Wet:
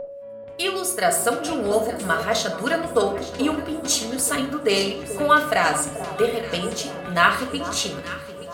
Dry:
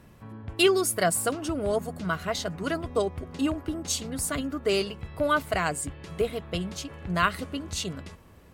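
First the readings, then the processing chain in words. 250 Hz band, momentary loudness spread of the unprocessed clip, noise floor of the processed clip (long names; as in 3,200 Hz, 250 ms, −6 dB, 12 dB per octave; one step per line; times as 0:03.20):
+3.5 dB, 11 LU, −37 dBFS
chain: fade in at the beginning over 1.59 s
high-pass filter 400 Hz 6 dB per octave
steady tone 560 Hz −34 dBFS
delay that swaps between a low-pass and a high-pass 436 ms, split 1,200 Hz, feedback 68%, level −11.5 dB
rectangular room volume 920 cubic metres, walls furnished, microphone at 1.8 metres
level +6.5 dB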